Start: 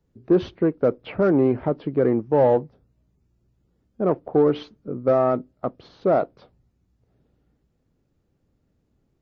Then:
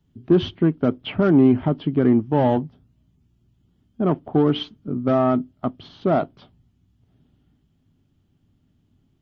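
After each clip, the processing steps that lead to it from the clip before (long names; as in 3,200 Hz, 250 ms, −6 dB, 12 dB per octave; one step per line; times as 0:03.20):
thirty-one-band graphic EQ 100 Hz +9 dB, 160 Hz +6 dB, 250 Hz +7 dB, 500 Hz −12 dB, 3,150 Hz +12 dB
level +1.5 dB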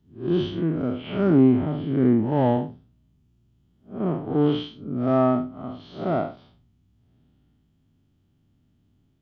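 spectrum smeared in time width 156 ms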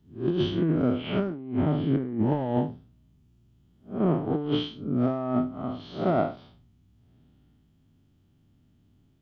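compressor whose output falls as the input rises −23 dBFS, ratio −0.5
level −1 dB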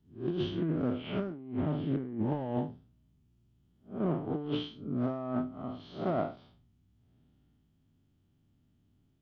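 highs frequency-modulated by the lows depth 0.15 ms
level −7 dB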